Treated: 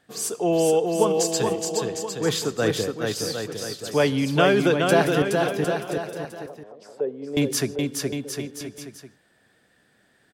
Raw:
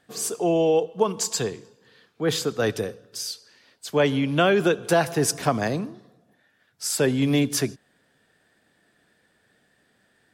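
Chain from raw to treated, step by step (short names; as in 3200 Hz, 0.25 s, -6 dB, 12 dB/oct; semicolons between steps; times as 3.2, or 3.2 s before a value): 5.22–7.37 auto-wah 460–3200 Hz, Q 4.7, down, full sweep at -20.5 dBFS; bouncing-ball echo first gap 0.42 s, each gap 0.8×, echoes 5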